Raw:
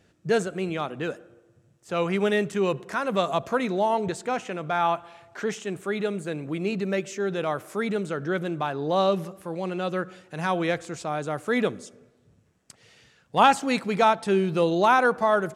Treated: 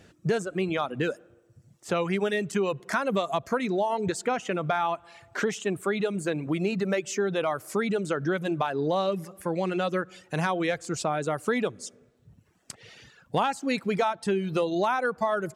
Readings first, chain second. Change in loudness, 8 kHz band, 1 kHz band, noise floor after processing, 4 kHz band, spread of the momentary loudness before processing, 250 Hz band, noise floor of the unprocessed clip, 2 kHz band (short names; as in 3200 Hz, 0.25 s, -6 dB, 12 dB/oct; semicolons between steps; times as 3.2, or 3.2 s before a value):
-2.5 dB, +2.0 dB, -4.5 dB, -62 dBFS, -2.5 dB, 12 LU, -1.0 dB, -63 dBFS, -2.0 dB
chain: reverb removal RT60 0.9 s; compressor 6:1, threshold -31 dBFS, peak gain reduction 17.5 dB; gain +7.5 dB